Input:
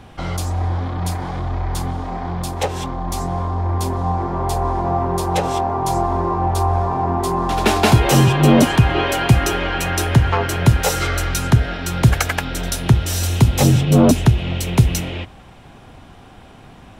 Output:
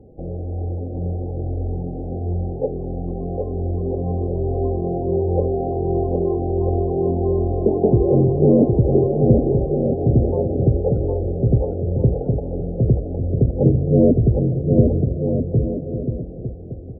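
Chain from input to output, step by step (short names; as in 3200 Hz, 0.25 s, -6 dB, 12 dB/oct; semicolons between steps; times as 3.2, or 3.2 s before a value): ladder low-pass 540 Hz, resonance 55%; loudest bins only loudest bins 32; bouncing-ball echo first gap 0.76 s, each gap 0.7×, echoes 5; gain +5 dB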